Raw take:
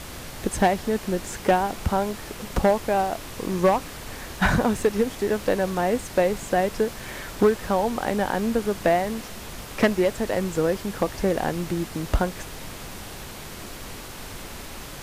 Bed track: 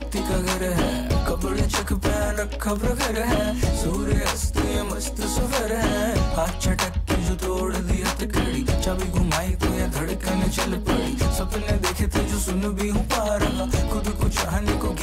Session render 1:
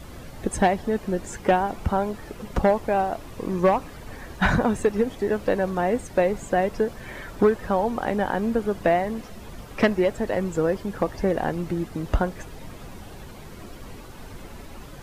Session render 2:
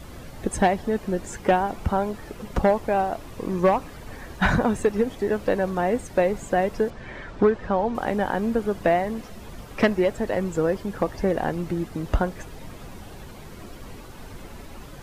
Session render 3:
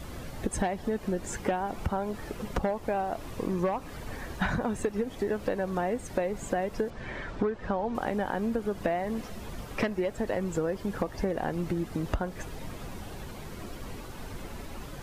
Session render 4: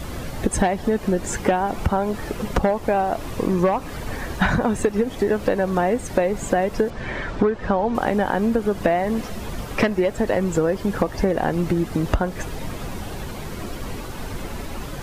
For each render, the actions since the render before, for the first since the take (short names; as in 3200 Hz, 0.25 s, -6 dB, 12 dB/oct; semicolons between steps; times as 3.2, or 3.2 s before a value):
denoiser 11 dB, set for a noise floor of -38 dBFS
6.9–7.95 air absorption 110 m
compressor, threshold -26 dBFS, peak gain reduction 11.5 dB
gain +9.5 dB